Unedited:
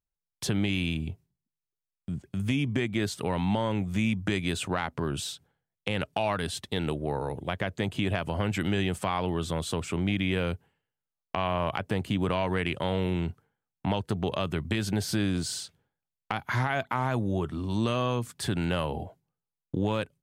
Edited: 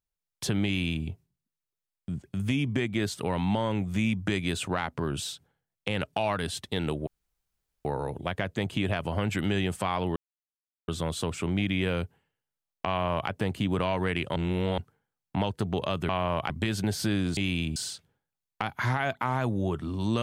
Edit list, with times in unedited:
0:00.66–0:01.05: duplicate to 0:15.46
0:07.07: splice in room tone 0.78 s
0:09.38: splice in silence 0.72 s
0:11.39–0:11.80: duplicate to 0:14.59
0:12.86–0:13.28: reverse

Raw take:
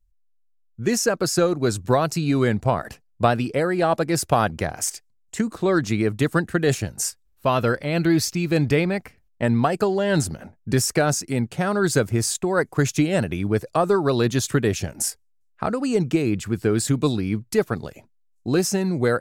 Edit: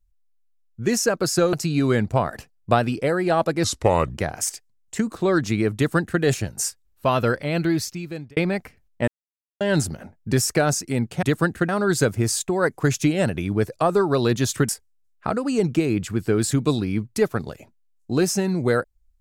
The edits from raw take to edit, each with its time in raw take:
0:01.53–0:02.05: remove
0:04.16–0:04.55: play speed 77%
0:06.16–0:06.62: duplicate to 0:11.63
0:07.86–0:08.77: fade out
0:09.48–0:10.01: silence
0:14.63–0:15.05: remove

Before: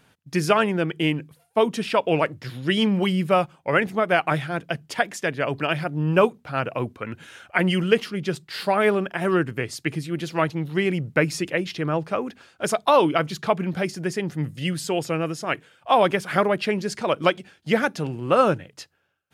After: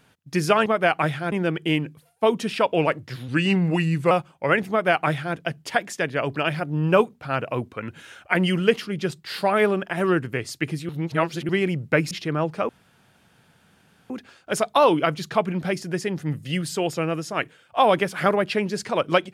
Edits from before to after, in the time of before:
0:02.62–0:03.35: play speed 88%
0:03.94–0:04.60: duplicate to 0:00.66
0:10.13–0:10.73: reverse
0:11.35–0:11.64: remove
0:12.22: splice in room tone 1.41 s

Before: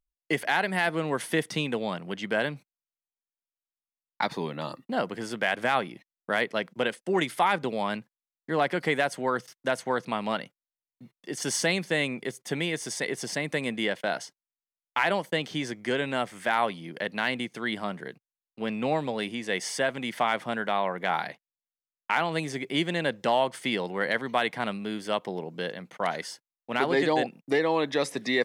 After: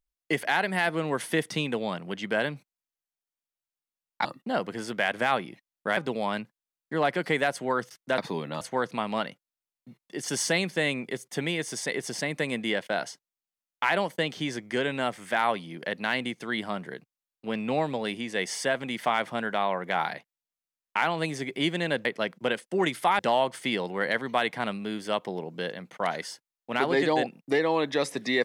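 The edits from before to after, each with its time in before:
0:04.25–0:04.68: move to 0:09.75
0:06.40–0:07.54: move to 0:23.19

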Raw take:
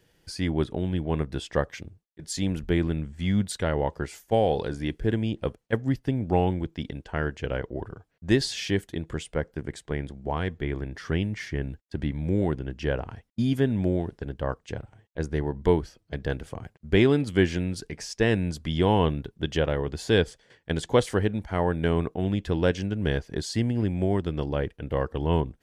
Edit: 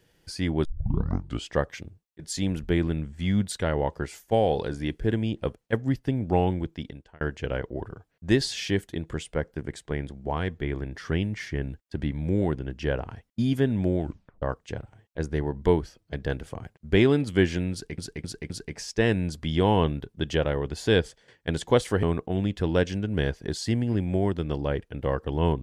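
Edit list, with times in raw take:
0:00.65: tape start 0.83 s
0:06.68–0:07.21: fade out
0:14.00: tape stop 0.42 s
0:17.72–0:17.98: repeat, 4 plays
0:21.25–0:21.91: remove

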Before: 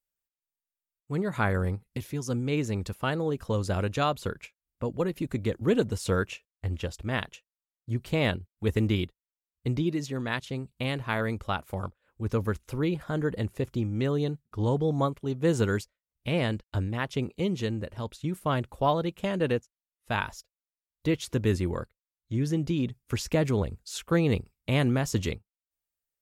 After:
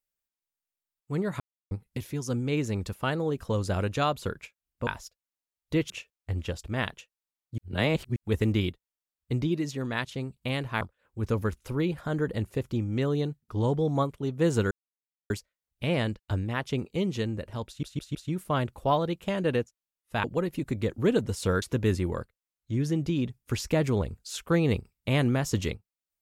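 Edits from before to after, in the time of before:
0:01.40–0:01.71: silence
0:04.87–0:06.25: swap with 0:20.20–0:21.23
0:07.93–0:08.51: reverse
0:11.16–0:11.84: remove
0:15.74: splice in silence 0.59 s
0:18.11: stutter 0.16 s, 4 plays

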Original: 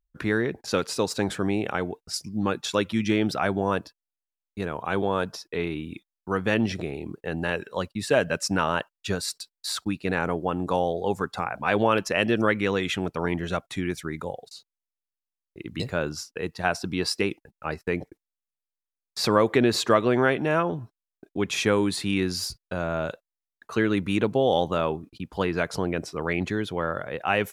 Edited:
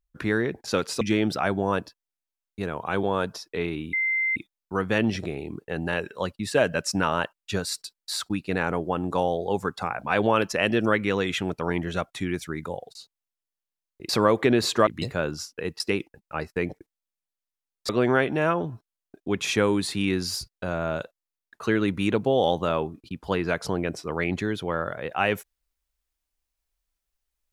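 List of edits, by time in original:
0:01.01–0:03.00: remove
0:05.92: insert tone 2,080 Hz −21.5 dBFS 0.43 s
0:16.58–0:17.11: remove
0:19.20–0:19.98: move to 0:15.65

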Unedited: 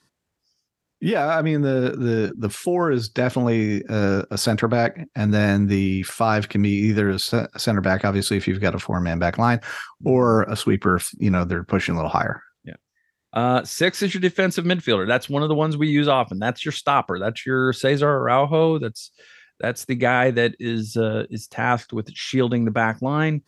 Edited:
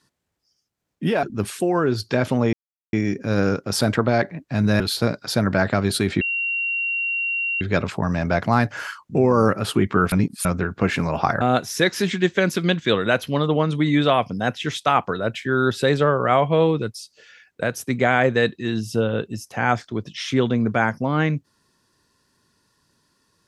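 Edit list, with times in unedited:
0:01.23–0:02.28: remove
0:03.58: splice in silence 0.40 s
0:05.45–0:07.11: remove
0:08.52: insert tone 2,750 Hz −21 dBFS 1.40 s
0:11.03–0:11.36: reverse
0:12.32–0:13.42: remove

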